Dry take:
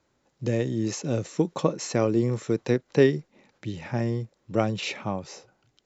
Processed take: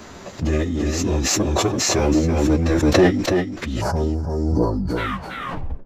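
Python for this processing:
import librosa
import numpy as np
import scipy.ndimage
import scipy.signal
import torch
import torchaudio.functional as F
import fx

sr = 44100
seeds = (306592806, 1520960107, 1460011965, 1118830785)

y = fx.tape_stop_end(x, sr, length_s=1.56)
y = fx.leveller(y, sr, passes=2)
y = fx.spec_box(y, sr, start_s=3.8, length_s=1.18, low_hz=1500.0, high_hz=4200.0, gain_db=-22)
y = fx.pitch_keep_formants(y, sr, semitones=-7.0)
y = fx.chorus_voices(y, sr, voices=4, hz=0.45, base_ms=13, depth_ms=3.4, mix_pct=40)
y = y + 10.0 ** (-5.5 / 20.0) * np.pad(y, (int(332 * sr / 1000.0), 0))[:len(y)]
y = fx.pre_swell(y, sr, db_per_s=22.0)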